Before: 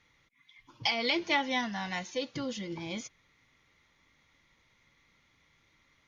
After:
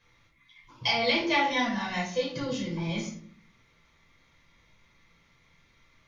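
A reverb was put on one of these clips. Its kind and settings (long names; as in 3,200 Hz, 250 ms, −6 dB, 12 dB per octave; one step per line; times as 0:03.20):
rectangular room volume 530 cubic metres, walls furnished, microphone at 5.3 metres
level −3.5 dB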